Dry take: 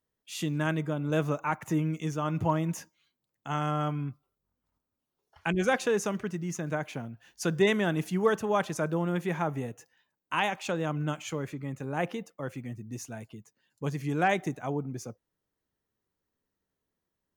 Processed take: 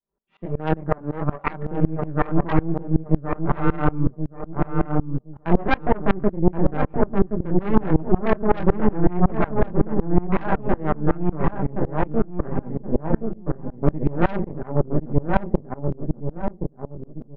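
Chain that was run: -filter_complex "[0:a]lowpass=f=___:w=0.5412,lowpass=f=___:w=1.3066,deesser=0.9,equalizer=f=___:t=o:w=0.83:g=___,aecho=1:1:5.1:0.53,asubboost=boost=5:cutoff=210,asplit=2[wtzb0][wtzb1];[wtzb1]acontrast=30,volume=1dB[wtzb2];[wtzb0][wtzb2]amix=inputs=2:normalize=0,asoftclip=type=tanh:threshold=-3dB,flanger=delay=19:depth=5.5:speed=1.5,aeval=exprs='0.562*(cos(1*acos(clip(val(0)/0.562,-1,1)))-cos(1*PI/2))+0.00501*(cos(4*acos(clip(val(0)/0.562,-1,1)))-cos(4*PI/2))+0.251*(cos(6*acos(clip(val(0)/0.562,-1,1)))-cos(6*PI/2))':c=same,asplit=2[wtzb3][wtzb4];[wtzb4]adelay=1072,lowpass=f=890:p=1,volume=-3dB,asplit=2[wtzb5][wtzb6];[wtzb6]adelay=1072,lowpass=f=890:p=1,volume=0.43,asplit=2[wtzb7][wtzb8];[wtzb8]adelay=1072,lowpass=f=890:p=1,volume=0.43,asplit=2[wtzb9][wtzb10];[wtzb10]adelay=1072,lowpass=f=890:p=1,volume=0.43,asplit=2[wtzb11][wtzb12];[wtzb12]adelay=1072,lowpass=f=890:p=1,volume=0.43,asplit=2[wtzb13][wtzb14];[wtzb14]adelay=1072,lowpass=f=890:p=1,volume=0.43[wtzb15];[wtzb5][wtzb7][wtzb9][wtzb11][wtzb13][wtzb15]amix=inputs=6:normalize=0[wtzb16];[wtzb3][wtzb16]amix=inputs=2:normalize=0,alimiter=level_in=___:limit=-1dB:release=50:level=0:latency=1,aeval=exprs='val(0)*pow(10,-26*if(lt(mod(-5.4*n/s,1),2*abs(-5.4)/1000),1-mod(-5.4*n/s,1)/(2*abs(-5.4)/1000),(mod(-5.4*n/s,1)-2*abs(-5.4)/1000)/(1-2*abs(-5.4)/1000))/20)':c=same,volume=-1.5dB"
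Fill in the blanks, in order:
1.2k, 1.2k, 110, -12.5, 7dB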